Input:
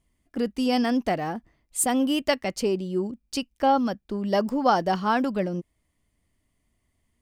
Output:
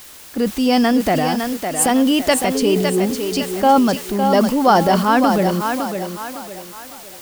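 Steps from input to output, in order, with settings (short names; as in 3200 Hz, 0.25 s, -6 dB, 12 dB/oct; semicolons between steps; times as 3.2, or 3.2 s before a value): 2.54–2.97 whine 430 Hz -32 dBFS; in parallel at -9.5 dB: requantised 6-bit, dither triangular; on the sum: transient shaper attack -2 dB, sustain +6 dB; thinning echo 0.558 s, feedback 41%, high-pass 240 Hz, level -5.5 dB; gain +5.5 dB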